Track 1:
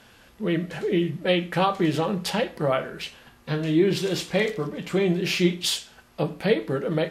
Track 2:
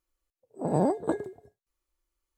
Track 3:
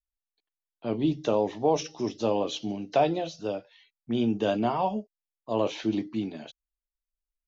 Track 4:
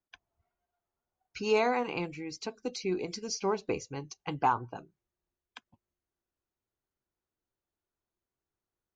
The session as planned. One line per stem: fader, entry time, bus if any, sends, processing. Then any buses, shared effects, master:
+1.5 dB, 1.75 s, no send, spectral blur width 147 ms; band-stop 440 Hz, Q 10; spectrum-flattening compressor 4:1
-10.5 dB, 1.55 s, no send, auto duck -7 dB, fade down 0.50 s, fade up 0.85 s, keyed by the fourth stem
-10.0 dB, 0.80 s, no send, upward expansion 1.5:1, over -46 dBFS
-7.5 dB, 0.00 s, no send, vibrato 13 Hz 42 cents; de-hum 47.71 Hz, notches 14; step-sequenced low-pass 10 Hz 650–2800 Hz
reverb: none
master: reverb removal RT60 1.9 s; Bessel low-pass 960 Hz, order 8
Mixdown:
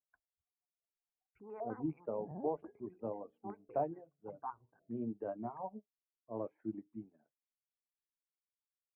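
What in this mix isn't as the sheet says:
stem 1: muted; stem 4 -7.5 dB -> -19.5 dB

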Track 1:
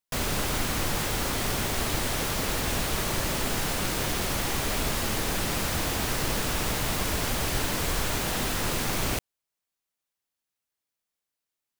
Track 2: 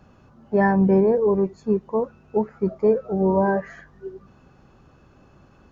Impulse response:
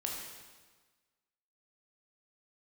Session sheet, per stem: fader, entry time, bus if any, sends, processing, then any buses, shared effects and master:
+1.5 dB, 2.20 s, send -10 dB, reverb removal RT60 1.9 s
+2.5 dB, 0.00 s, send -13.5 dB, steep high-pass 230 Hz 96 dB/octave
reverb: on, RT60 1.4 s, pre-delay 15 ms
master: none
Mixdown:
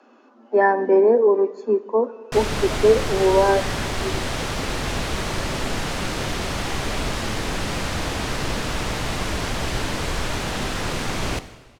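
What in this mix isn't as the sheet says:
stem 1: missing reverb removal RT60 1.9 s; master: extra distance through air 62 m

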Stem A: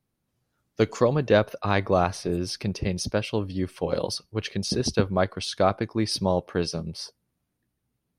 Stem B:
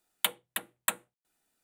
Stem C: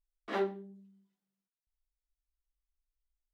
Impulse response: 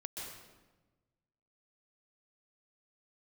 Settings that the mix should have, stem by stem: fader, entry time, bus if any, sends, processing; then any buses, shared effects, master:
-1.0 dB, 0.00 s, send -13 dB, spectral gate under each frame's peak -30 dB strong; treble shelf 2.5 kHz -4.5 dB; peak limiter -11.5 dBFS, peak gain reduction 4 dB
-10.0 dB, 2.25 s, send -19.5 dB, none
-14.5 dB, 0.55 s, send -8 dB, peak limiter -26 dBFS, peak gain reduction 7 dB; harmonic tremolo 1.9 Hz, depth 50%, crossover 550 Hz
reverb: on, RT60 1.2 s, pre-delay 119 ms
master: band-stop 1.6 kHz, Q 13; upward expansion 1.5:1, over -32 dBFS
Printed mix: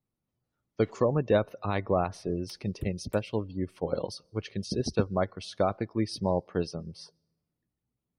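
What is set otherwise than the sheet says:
stem A: send -13 dB -> -23.5 dB; stem B -10.0 dB -> -21.5 dB; reverb return -8.0 dB

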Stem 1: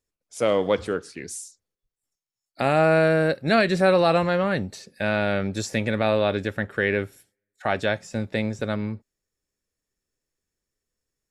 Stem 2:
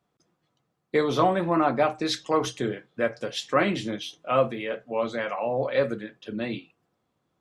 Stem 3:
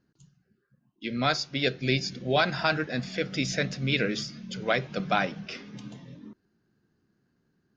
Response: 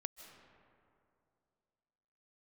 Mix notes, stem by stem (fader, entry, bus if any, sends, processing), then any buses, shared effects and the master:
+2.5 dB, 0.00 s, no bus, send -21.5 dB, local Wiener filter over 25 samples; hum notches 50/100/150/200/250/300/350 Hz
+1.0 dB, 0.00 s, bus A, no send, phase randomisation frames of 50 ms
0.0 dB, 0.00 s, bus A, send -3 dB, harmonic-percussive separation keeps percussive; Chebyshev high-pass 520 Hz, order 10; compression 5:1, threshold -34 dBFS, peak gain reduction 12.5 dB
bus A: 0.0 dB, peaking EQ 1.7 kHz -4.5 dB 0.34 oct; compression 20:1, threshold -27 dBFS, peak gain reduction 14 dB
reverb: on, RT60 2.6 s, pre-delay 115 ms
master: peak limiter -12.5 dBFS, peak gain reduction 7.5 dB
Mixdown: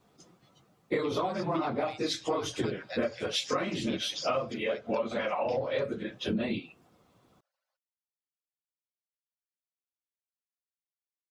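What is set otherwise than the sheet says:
stem 1: muted; stem 2 +1.0 dB -> +11.0 dB; reverb return -8.5 dB

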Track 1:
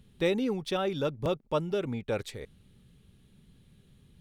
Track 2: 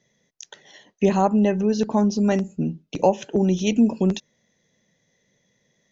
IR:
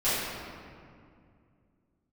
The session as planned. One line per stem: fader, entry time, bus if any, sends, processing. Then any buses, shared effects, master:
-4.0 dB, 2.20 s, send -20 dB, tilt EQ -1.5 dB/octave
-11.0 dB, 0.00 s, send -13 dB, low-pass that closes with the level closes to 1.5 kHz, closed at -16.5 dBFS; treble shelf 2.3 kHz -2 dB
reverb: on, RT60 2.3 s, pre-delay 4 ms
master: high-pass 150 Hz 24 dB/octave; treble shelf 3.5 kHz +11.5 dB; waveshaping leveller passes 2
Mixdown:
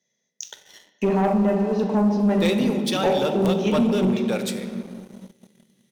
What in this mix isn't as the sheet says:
stem 1: missing tilt EQ -1.5 dB/octave; stem 2: missing treble shelf 2.3 kHz -2 dB

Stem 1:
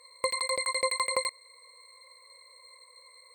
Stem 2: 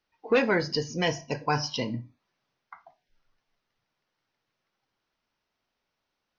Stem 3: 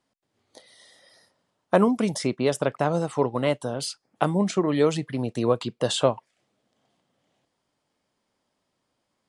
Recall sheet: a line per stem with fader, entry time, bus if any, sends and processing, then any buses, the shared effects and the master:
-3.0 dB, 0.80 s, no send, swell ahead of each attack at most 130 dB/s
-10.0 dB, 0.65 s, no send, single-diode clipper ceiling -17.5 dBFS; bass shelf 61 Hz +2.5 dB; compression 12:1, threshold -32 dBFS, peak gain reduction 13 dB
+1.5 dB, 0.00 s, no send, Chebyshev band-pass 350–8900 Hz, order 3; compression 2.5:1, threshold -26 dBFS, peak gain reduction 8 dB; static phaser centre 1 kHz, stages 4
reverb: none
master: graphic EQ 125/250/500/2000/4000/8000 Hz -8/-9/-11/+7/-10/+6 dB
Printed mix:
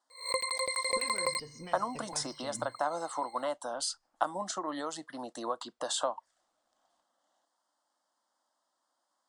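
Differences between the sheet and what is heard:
stem 1: entry 0.80 s -> 0.10 s; master: missing graphic EQ 125/250/500/2000/4000/8000 Hz -8/-9/-11/+7/-10/+6 dB

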